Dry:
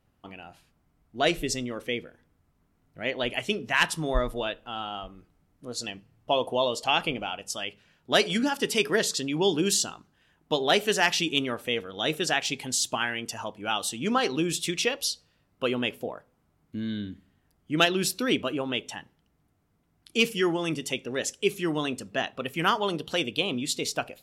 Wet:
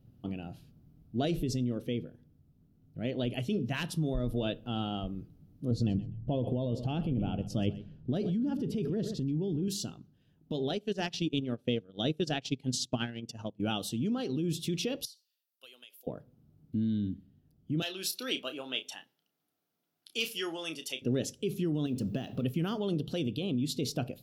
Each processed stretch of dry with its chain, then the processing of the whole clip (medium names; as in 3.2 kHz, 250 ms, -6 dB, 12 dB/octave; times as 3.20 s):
5.71–9.68 s: tilt EQ -3.5 dB/octave + feedback delay 126 ms, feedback 16%, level -18.5 dB
10.69–13.60 s: low-pass 7.7 kHz + transient shaper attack +5 dB, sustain -11 dB + upward expansion, over -39 dBFS
15.05–16.07 s: high-pass 610 Hz + differentiator + compression 8:1, threshold -39 dBFS
17.82–21.02 s: high-pass 1 kHz + doubling 31 ms -10 dB
21.86–22.43 s: companding laws mixed up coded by mu + compression 5:1, threshold -33 dBFS
whole clip: graphic EQ 125/250/1000/2000/8000 Hz +11/+5/-12/-12/-11 dB; peak limiter -22 dBFS; gain riding within 4 dB 0.5 s